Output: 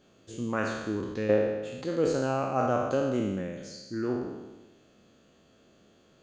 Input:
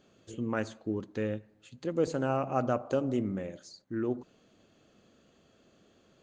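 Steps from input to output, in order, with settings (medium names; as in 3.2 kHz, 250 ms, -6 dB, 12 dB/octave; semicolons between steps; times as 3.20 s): spectral sustain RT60 1.21 s; 1.29–1.84 s: peaking EQ 690 Hz +14.5 dB 2.8 oct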